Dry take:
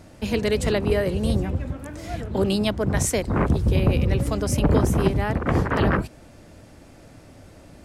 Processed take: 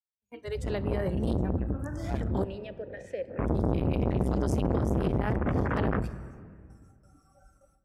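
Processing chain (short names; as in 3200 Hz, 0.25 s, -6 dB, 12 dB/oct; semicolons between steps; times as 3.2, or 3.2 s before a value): opening faded in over 2.09 s; HPF 47 Hz 12 dB/oct; spectral noise reduction 28 dB; gate with hold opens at -54 dBFS; high shelf 4100 Hz -8 dB; limiter -18.5 dBFS, peak gain reduction 10.5 dB; 2.44–3.39 vowel filter e; low shelf 130 Hz +9 dB; on a send at -14 dB: reverb RT60 1.9 s, pre-delay 4 ms; on the sum: core saturation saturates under 440 Hz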